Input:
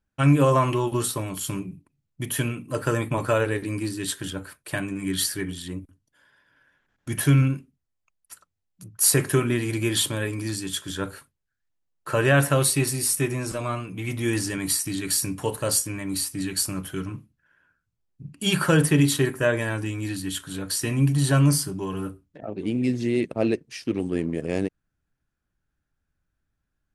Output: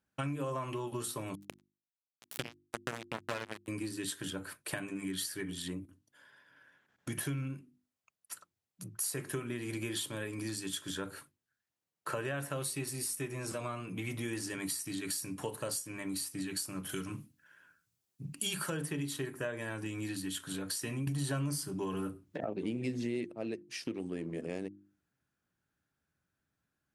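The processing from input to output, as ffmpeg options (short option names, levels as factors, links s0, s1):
-filter_complex "[0:a]asettb=1/sr,asplit=3[s0][s1][s2];[s0]atrim=end=1.354[s3];[s1]atrim=start=1.35:end=3.68,asetpts=PTS-STARTPTS,afade=t=in:d=0.004:c=qsin,afade=t=out:st=2.326:d=0.004:c=qsin,acrusher=bits=2:mix=0:aa=0.5[s4];[s2]atrim=start=3.676[s5];[s3][s4]acrossfade=d=0.004:c1=hsin:c2=qsin[s6];[s6][s5]acrossfade=d=0.004:c1=qsin:c2=hsin,asettb=1/sr,asplit=3[s7][s8][s9];[s7]atrim=end=16.894[s10];[s8]atrim=start=16.89:end=18.7,asetpts=PTS-STARTPTS,afade=t=in:d=0.004:c=qsin,afade=t=out:st=1.806:d=0.004:c=qsin,highshelf=f=3500:g=12[s11];[s9]atrim=start=18.696[s12];[s10][s11]acrossfade=d=0.004:c1=hsin:c2=qsin[s13];[s13][s12]acrossfade=d=0.004:c1=qsin:c2=hsin,asplit=3[s14][s15][s16];[s14]atrim=end=21.072[s17];[s15]atrim=start=21.068:end=23.312,asetpts=PTS-STARTPTS,volume=3.76[s18];[s16]atrim=start=23.308[s19];[s17][s18]acrossfade=d=0.004:c1=hsin:c2=hsin[s20];[s20][s19]acrossfade=d=0.004:c1=hsin:c2=hsin,highpass=120,bandreject=f=50:t=h:w=6,bandreject=f=100:t=h:w=6,bandreject=f=150:t=h:w=6,bandreject=f=200:t=h:w=6,bandreject=f=250:t=h:w=6,bandreject=f=300:t=h:w=6,bandreject=f=350:t=h:w=6,acompressor=threshold=0.0158:ratio=5"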